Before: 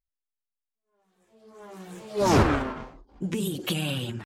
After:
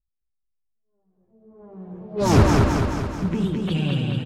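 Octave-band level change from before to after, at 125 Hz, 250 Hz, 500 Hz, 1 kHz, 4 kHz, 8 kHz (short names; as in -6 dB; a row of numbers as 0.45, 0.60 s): +9.0, +6.0, +3.0, +2.5, 0.0, +1.5 dB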